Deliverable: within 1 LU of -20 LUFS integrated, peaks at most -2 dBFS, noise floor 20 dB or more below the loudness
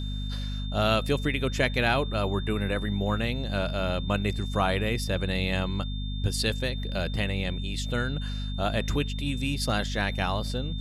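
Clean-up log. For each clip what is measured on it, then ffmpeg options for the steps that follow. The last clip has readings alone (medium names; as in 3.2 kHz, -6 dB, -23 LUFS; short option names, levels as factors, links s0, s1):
hum 50 Hz; highest harmonic 250 Hz; hum level -29 dBFS; steady tone 3.6 kHz; tone level -41 dBFS; loudness -28.5 LUFS; peak level -10.0 dBFS; loudness target -20.0 LUFS
-> -af "bandreject=f=50:t=h:w=6,bandreject=f=100:t=h:w=6,bandreject=f=150:t=h:w=6,bandreject=f=200:t=h:w=6,bandreject=f=250:t=h:w=6"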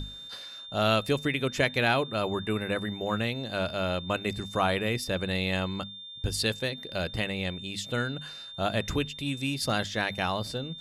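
hum not found; steady tone 3.6 kHz; tone level -41 dBFS
-> -af "bandreject=f=3600:w=30"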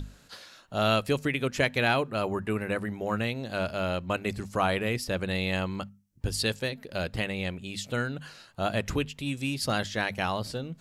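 steady tone not found; loudness -29.5 LUFS; peak level -10.5 dBFS; loudness target -20.0 LUFS
-> -af "volume=2.99,alimiter=limit=0.794:level=0:latency=1"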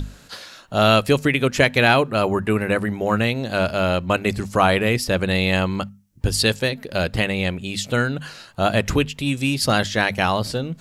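loudness -20.5 LUFS; peak level -2.0 dBFS; noise floor -48 dBFS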